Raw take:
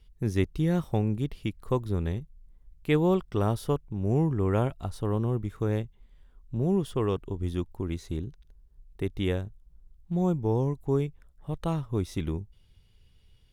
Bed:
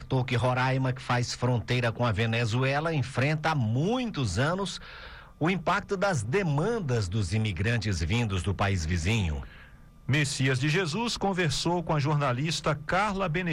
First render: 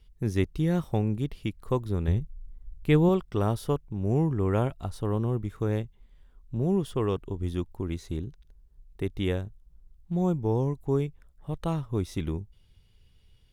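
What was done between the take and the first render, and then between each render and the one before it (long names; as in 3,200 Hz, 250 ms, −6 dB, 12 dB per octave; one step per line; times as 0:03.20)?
0:02.08–0:03.09: low-shelf EQ 150 Hz +10.5 dB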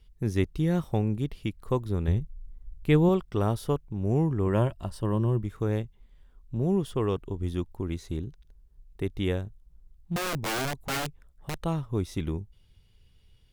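0:04.46–0:05.44: EQ curve with evenly spaced ripples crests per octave 1.3, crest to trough 7 dB
0:10.16–0:11.61: wrap-around overflow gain 25 dB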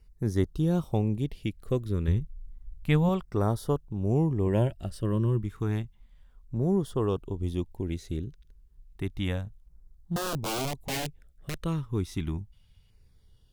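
auto-filter notch saw down 0.31 Hz 300–3,400 Hz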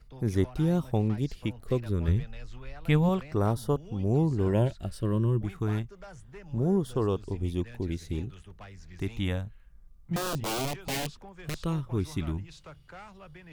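mix in bed −21 dB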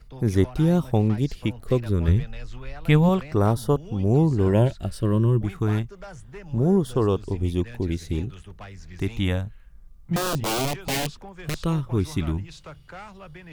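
level +6 dB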